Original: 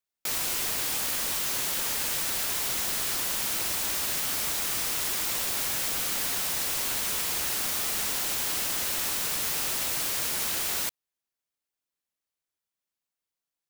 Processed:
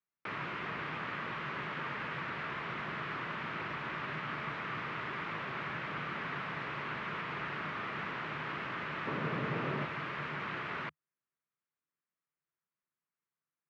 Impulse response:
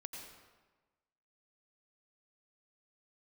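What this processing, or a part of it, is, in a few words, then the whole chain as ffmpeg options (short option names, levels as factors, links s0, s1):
bass cabinet: -filter_complex "[0:a]asettb=1/sr,asplit=3[s0][s1][s2];[s0]atrim=end=9.074[s3];[s1]atrim=start=9.07:end=9.85,asetpts=PTS-STARTPTS,afade=t=in:d=0.004:c=qsin,afade=t=out:st=0.776:d=0.004:c=qsin,equalizer=f=125:t=o:w=1:g=7,equalizer=f=250:t=o:w=1:g=7,equalizer=f=500:t=o:w=1:g=8[s4];[s2]atrim=start=9.846[s5];[s3][s4]acrossfade=d=0.004:c1=hsin:c2=qsin[s6];[s6][s5]acrossfade=d=0.004:c1=qsin:c2=hsin,highpass=f=84:w=0.5412,highpass=f=84:w=1.3066,equalizer=f=87:t=q:w=4:g=-9,equalizer=f=150:t=q:w=4:g=8,equalizer=f=270:t=q:w=4:g=-3,equalizer=f=520:t=q:w=4:g=-5,equalizer=f=760:t=q:w=4:g=-7,equalizer=f=1200:t=q:w=4:g=4,lowpass=f=2200:w=0.5412,lowpass=f=2200:w=1.3066"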